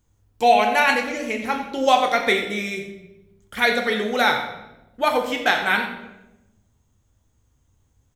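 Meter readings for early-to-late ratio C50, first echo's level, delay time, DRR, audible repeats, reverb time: 6.5 dB, -12.0 dB, 89 ms, 2.5 dB, 1, 0.95 s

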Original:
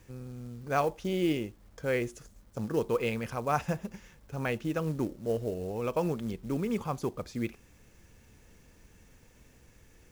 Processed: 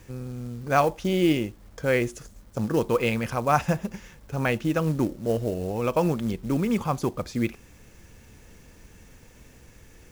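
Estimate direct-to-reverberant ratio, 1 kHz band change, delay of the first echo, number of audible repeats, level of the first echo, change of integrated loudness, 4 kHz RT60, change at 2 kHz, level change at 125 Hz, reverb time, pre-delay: none, +7.5 dB, none, none, none, +6.5 dB, none, +7.5 dB, +7.5 dB, none, none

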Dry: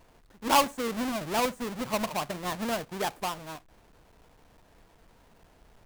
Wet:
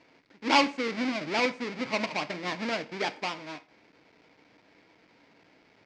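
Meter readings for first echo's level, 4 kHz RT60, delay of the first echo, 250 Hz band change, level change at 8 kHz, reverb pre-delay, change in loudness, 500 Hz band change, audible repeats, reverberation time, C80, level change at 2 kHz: none, 0.40 s, none, +1.0 dB, -8.0 dB, 3 ms, +0.5 dB, -0.5 dB, none, 0.45 s, 22.5 dB, +5.0 dB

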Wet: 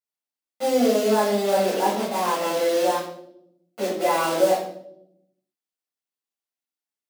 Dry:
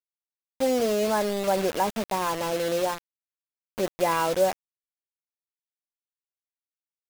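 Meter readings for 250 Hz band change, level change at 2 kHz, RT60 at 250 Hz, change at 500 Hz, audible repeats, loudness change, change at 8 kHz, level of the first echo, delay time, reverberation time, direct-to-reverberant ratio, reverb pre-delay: +4.5 dB, +2.5 dB, 1.3 s, +4.0 dB, none, +3.5 dB, +2.5 dB, none, none, 0.75 s, -8.0 dB, 6 ms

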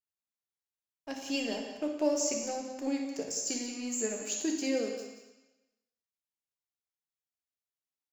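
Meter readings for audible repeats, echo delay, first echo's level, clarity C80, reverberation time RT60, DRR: 1, 0.18 s, -10.5 dB, 5.5 dB, 1.0 s, 1.0 dB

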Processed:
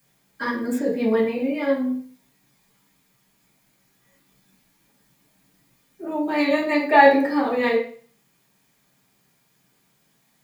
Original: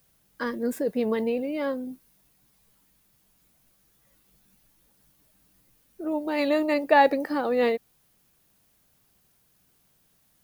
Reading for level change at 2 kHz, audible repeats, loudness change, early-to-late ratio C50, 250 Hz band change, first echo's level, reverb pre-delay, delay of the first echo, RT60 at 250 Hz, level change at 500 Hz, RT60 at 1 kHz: +7.0 dB, none, +4.5 dB, 6.5 dB, +5.5 dB, none, 3 ms, none, 0.50 s, +3.5 dB, 0.45 s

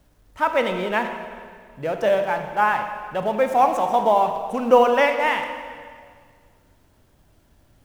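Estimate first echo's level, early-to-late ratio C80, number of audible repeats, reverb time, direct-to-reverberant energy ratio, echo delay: none, 8.0 dB, none, 2.0 s, 6.5 dB, none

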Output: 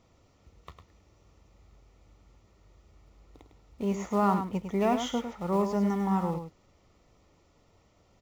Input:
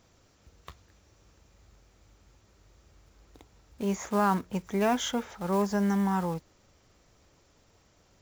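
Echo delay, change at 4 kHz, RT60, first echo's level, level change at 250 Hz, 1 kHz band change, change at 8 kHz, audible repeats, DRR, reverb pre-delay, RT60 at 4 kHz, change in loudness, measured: 0.103 s, -3.5 dB, none, -8.0 dB, 0.0 dB, 0.0 dB, -6.5 dB, 1, none, none, none, 0.0 dB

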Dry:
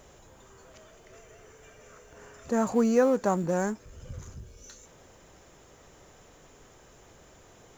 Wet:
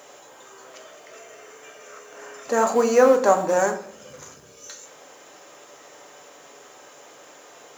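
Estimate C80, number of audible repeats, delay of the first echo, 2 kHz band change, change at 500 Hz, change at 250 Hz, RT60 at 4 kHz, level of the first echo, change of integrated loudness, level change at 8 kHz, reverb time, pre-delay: 13.5 dB, none, none, +10.0 dB, +8.5 dB, -1.0 dB, 0.40 s, none, +7.0 dB, n/a, 0.60 s, 4 ms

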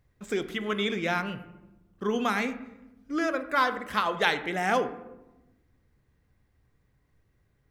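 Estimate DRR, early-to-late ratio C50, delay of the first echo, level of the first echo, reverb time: 10.5 dB, 12.5 dB, none, none, 1.0 s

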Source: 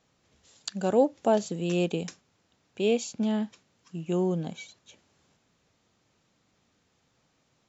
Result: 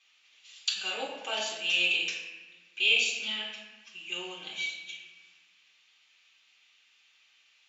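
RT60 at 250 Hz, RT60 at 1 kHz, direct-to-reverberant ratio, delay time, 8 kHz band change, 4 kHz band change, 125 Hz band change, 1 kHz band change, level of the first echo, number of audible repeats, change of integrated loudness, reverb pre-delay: 1.8 s, 1.1 s, -7.0 dB, none, n/a, +13.5 dB, under -25 dB, -8.0 dB, none, none, -0.5 dB, 3 ms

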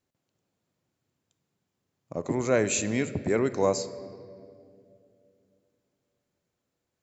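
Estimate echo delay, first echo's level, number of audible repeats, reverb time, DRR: none, none, none, 2.5 s, 12.0 dB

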